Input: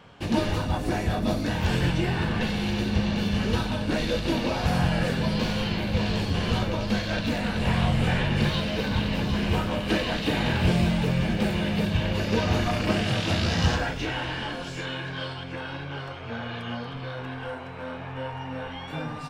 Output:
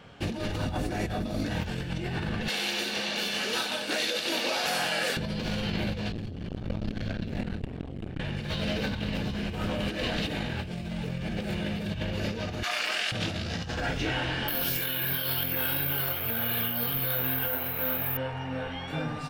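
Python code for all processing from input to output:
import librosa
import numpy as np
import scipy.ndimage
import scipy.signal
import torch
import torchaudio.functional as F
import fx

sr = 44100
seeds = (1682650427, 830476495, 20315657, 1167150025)

y = fx.chain(x, sr, fx.highpass(hz=350.0, slope=12),
    fx.tilt_eq(slope=2.5), at=(2.48, 5.17))
y = fx.chain(y, sr, fx.bass_treble(bass_db=11, treble_db=-4),
    fx.transformer_sat(knee_hz=450.0), at=(6.12, 8.2))
y = fx.chain(y, sr, fx.highpass(hz=1200.0, slope=12),
    fx.env_flatten(amount_pct=100), at=(12.63, 13.12))
y = fx.chain(y, sr, fx.resample_bad(factor=3, down='filtered', up='zero_stuff'),
    fx.peak_eq(hz=3900.0, db=6.0, octaves=2.4), at=(14.48, 18.17))
y = fx.peak_eq(y, sr, hz=1000.0, db=-6.5, octaves=0.31)
y = fx.over_compress(y, sr, threshold_db=-29.0, ratio=-1.0)
y = y * 10.0 ** (-2.0 / 20.0)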